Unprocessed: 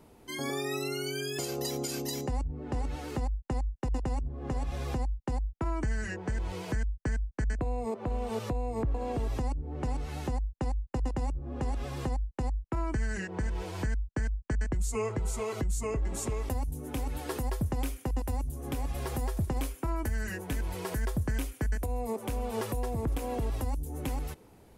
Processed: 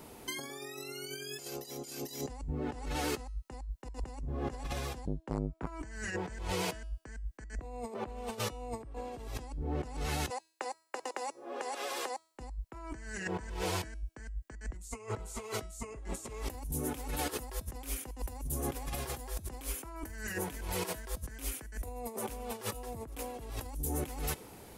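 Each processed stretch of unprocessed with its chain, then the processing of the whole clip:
5.06–5.67 high shelf 4500 Hz -10 dB + core saturation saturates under 310 Hz
10.3–12.35 HPF 400 Hz 24 dB/oct + compressor 4:1, threshold -41 dBFS
whole clip: tilt +1.5 dB/oct; negative-ratio compressor -40 dBFS, ratio -0.5; de-hum 323.6 Hz, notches 34; gain +2.5 dB

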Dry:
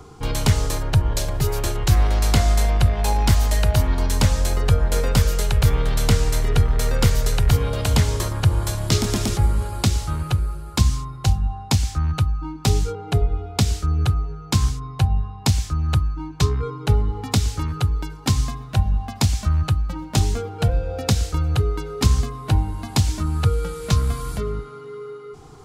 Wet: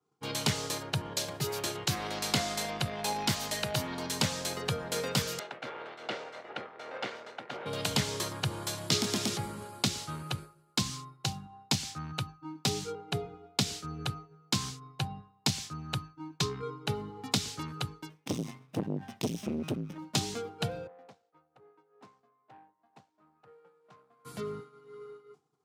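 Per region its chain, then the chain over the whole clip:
5.39–7.66 minimum comb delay 1.4 ms + BPF 440–2200 Hz
18.09–19.98 minimum comb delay 0.34 ms + low shelf 130 Hz +4 dB + core saturation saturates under 380 Hz
20.87–24.25 band-pass 750 Hz, Q 1.8 + tube stage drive 32 dB, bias 0.4
whole clip: dynamic EQ 3800 Hz, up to +6 dB, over -41 dBFS, Q 0.76; HPF 140 Hz 24 dB/oct; expander -30 dBFS; gain -8.5 dB

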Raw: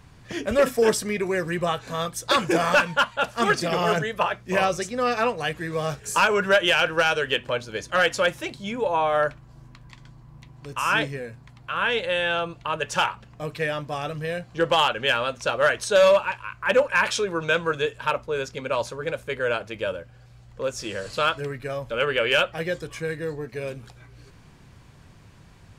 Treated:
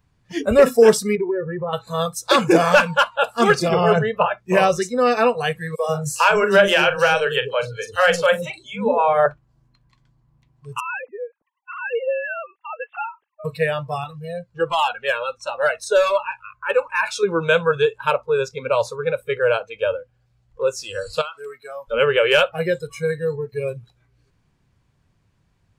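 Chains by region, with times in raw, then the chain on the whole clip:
1.15–1.73 LPF 1500 Hz + comb 2.2 ms, depth 42% + compressor 4:1, threshold -27 dBFS
3.69–4.38 LPF 3100 Hz 6 dB/oct + bell 89 Hz +12 dB 0.55 oct
5.75–9.26 doubler 40 ms -11 dB + three bands offset in time highs, mids, lows 40/140 ms, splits 380/3800 Hz
10.8–13.45 sine-wave speech + compressor 1.5:1, threshold -41 dBFS
14.04–17.23 notch 3100 Hz, Q 13 + cascading flanger falling 1.4 Hz
21.21–21.88 HPF 640 Hz 6 dB/oct + compressor 16:1, threshold -29 dBFS
whole clip: low shelf 180 Hz +3.5 dB; spectral noise reduction 19 dB; dynamic EQ 400 Hz, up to +5 dB, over -34 dBFS, Q 0.74; gain +3 dB

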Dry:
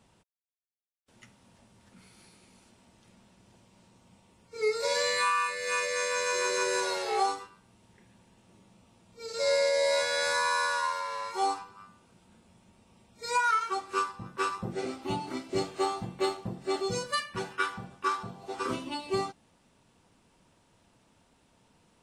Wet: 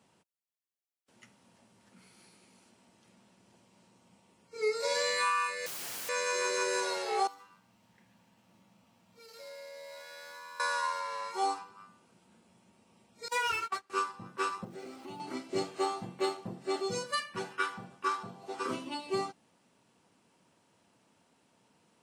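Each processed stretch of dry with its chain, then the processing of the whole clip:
5.66–6.09 HPF 240 Hz 24 dB/oct + wrapped overs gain 33 dB
7.27–10.6 bell 390 Hz -10.5 dB 0.49 oct + compressor 2.5:1, threshold -51 dBFS + running maximum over 3 samples
13.28–13.9 minimum comb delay 9.5 ms + gate -35 dBFS, range -22 dB + three-band squash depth 40%
14.64–15.2 compressor 3:1, threshold -41 dBFS + sample gate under -57.5 dBFS
whole clip: HPF 150 Hz 12 dB/oct; notch 3600 Hz, Q 23; gain -2.5 dB

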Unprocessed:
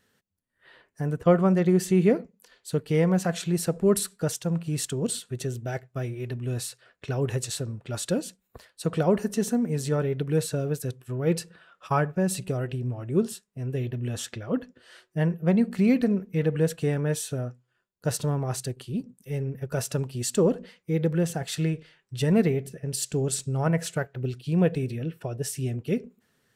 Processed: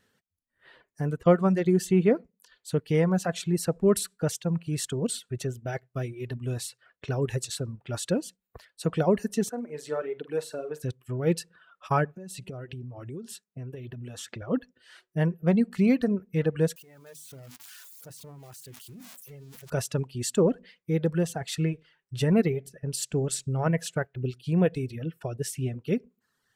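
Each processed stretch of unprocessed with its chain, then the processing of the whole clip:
9.49–10.83 HPF 440 Hz + high shelf 2600 Hz -9 dB + flutter echo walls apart 7.9 m, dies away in 0.33 s
12.16–14.42 compressor 16:1, threshold -33 dBFS + HPF 61 Hz
16.76–19.7 switching spikes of -21 dBFS + notches 50/100/150/200/250/300 Hz + level quantiser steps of 22 dB
whole clip: reverb removal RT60 0.88 s; high shelf 8400 Hz -4 dB

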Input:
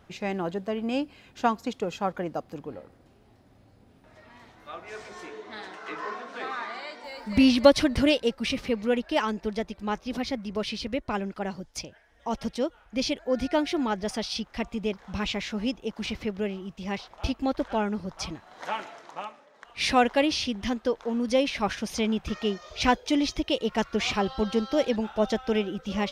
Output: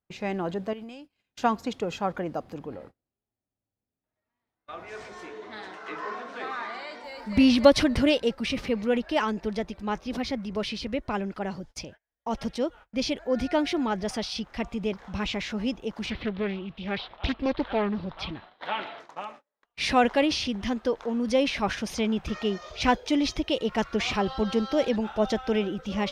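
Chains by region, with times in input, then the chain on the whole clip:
0.73–1.44 compressor 16:1, threshold -41 dBFS + high shelf 2500 Hz +9.5 dB
16.1–19 resonant high shelf 5000 Hz -11.5 dB, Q 3 + Doppler distortion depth 0.59 ms
whole clip: transient shaper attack 0 dB, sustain +4 dB; high shelf 4900 Hz -5 dB; gate -45 dBFS, range -34 dB

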